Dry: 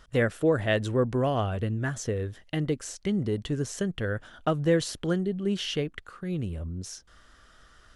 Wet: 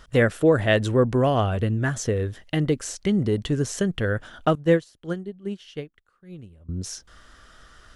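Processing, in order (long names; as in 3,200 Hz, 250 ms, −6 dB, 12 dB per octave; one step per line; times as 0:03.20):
0:04.55–0:06.69: expander for the loud parts 2.5 to 1, over −36 dBFS
level +5.5 dB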